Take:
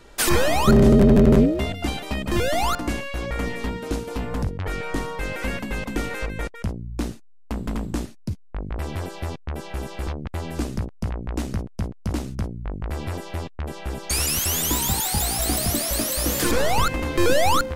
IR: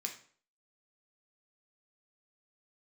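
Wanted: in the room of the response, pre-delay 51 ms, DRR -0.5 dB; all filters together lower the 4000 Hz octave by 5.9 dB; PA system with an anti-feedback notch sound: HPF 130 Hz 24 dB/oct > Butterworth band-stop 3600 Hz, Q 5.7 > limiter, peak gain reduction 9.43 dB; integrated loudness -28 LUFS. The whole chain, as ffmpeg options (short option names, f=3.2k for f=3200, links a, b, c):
-filter_complex "[0:a]equalizer=f=4k:t=o:g=-6.5,asplit=2[a][b];[1:a]atrim=start_sample=2205,adelay=51[c];[b][c]afir=irnorm=-1:irlink=0,volume=1dB[d];[a][d]amix=inputs=2:normalize=0,highpass=f=130:w=0.5412,highpass=f=130:w=1.3066,asuperstop=centerf=3600:order=8:qfactor=5.7,volume=-3.5dB,alimiter=limit=-15.5dB:level=0:latency=1"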